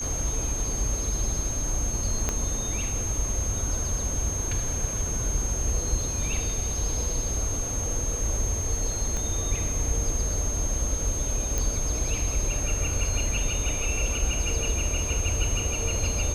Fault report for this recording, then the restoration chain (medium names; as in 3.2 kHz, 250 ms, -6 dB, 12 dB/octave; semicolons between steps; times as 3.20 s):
whine 6.4 kHz -30 dBFS
2.29 s: pop -11 dBFS
9.17 s: pop -18 dBFS
11.58 s: pop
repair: de-click; band-stop 6.4 kHz, Q 30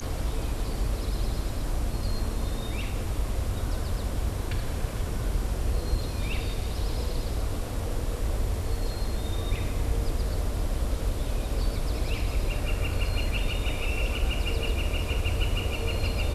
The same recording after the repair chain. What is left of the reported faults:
2.29 s: pop
9.17 s: pop